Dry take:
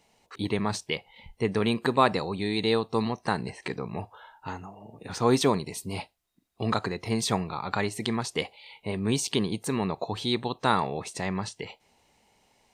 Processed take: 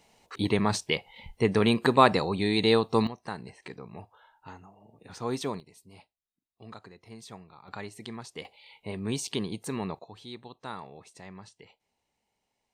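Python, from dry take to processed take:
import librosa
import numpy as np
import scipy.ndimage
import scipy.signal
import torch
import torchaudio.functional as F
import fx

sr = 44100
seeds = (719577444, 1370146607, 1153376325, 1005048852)

y = fx.gain(x, sr, db=fx.steps((0.0, 2.5), (3.07, -9.5), (5.6, -19.0), (7.68, -11.5), (8.45, -5.0), (9.99, -15.5)))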